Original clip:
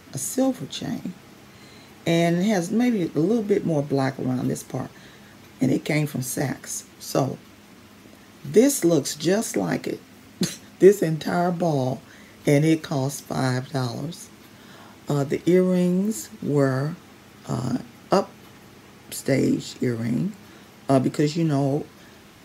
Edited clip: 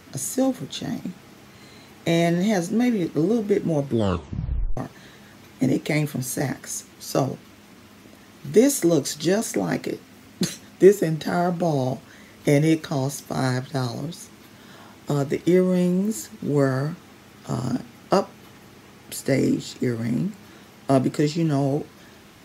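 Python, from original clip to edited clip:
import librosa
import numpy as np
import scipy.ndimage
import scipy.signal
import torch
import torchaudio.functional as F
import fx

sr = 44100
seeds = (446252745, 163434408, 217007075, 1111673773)

y = fx.edit(x, sr, fx.tape_stop(start_s=3.81, length_s=0.96), tone=tone)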